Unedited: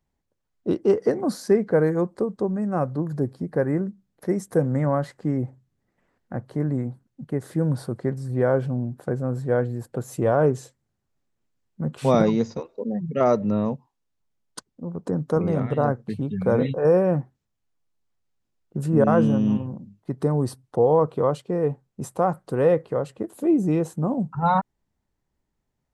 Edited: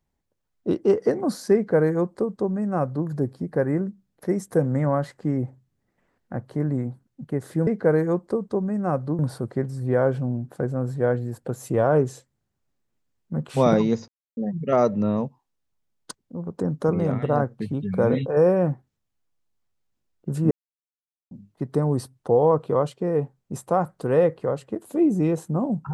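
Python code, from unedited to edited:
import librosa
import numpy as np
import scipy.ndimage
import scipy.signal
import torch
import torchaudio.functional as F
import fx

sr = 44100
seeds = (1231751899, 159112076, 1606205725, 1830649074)

y = fx.edit(x, sr, fx.duplicate(start_s=1.55, length_s=1.52, to_s=7.67),
    fx.silence(start_s=12.56, length_s=0.29),
    fx.silence(start_s=18.99, length_s=0.8), tone=tone)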